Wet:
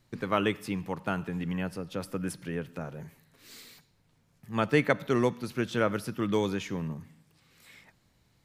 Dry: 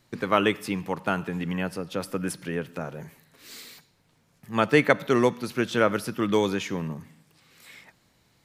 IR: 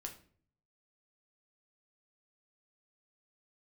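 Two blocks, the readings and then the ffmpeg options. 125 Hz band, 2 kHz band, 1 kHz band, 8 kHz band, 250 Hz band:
-1.5 dB, -6.0 dB, -6.0 dB, -6.0 dB, -3.5 dB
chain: -af "lowshelf=f=130:g=10,volume=-6dB"

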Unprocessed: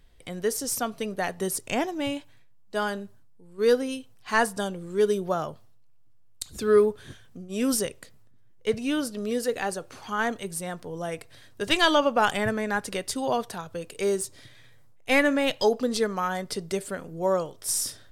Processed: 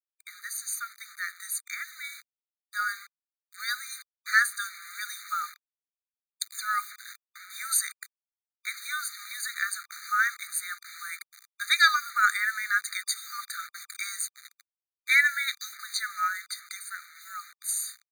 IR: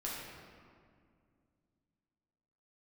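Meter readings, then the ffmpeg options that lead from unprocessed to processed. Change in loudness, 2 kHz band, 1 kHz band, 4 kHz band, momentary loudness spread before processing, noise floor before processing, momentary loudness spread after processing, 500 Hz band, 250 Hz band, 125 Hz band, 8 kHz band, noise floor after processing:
-2.0 dB, +4.5 dB, -3.0 dB, -1.0 dB, 15 LU, -51 dBFS, 18 LU, under -40 dB, under -40 dB, under -40 dB, +1.0 dB, under -85 dBFS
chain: -af "acrusher=bits=6:mix=0:aa=0.000001,dynaudnorm=f=470:g=11:m=7dB,afftfilt=real='re*eq(mod(floor(b*sr/1024/1200),2),1)':imag='im*eq(mod(floor(b*sr/1024/1200),2),1)':win_size=1024:overlap=0.75"

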